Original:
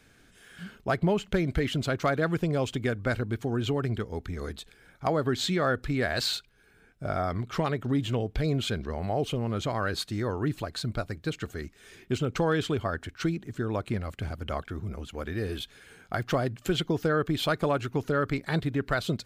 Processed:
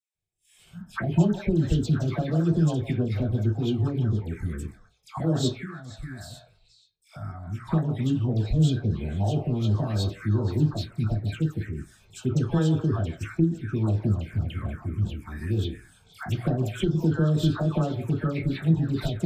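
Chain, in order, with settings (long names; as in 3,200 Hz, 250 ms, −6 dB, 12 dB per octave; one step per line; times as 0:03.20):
parametric band 6,400 Hz +3.5 dB 2.7 octaves
noise gate −51 dBFS, range −30 dB
all-pass dispersion lows, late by 147 ms, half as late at 1,200 Hz
0:05.48–0:07.67: downward compressor 4 to 1, threshold −37 dBFS, peak gain reduction 13.5 dB
low-shelf EQ 430 Hz +11.5 dB
mains-hum notches 60/120 Hz
echo through a band-pass that steps 159 ms, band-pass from 690 Hz, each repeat 1.4 octaves, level −7.5 dB
convolution reverb RT60 0.20 s, pre-delay 3 ms, DRR 3 dB
phaser swept by the level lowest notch 250 Hz, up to 2,200 Hz, full sweep at −17 dBFS
level −3.5 dB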